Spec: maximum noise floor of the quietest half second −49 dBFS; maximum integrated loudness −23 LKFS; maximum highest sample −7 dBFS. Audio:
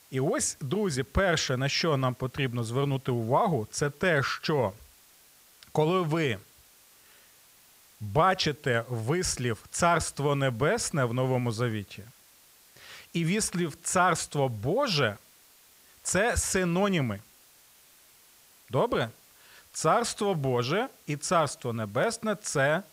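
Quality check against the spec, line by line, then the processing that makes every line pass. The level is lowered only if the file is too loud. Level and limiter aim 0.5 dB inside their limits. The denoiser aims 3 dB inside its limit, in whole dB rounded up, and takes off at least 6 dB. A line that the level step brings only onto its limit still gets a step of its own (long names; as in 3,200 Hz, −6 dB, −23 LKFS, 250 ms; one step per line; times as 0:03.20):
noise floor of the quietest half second −58 dBFS: in spec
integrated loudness −28.0 LKFS: in spec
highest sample −10.0 dBFS: in spec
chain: no processing needed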